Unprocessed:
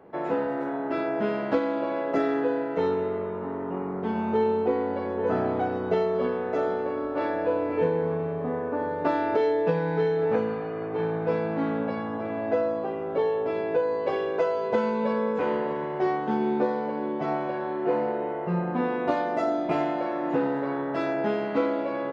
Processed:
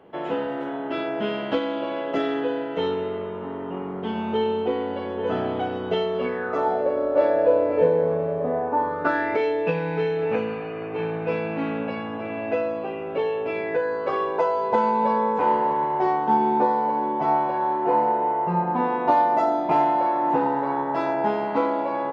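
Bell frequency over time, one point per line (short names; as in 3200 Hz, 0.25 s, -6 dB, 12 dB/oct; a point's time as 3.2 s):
bell +15 dB 0.39 oct
6.16 s 3100 Hz
6.84 s 570 Hz
8.47 s 570 Hz
9.47 s 2600 Hz
13.48 s 2600 Hz
14.4 s 900 Hz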